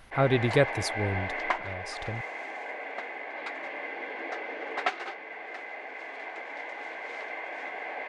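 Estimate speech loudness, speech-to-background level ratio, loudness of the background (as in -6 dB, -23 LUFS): -28.0 LUFS, 7.5 dB, -35.5 LUFS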